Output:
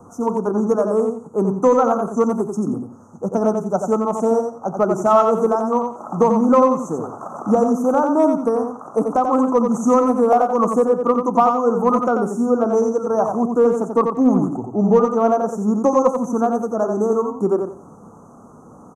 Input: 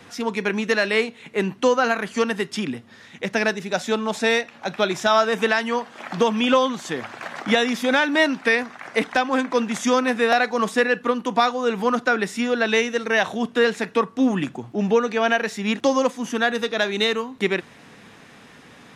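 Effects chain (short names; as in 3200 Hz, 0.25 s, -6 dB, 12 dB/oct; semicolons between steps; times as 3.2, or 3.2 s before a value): Chebyshev band-stop 1300–6100 Hz, order 5; high shelf 3900 Hz -10.5 dB; de-hum 134.1 Hz, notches 6; in parallel at -8 dB: hard clip -15 dBFS, distortion -17 dB; on the sum: feedback echo 89 ms, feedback 23%, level -5.5 dB; gain +2.5 dB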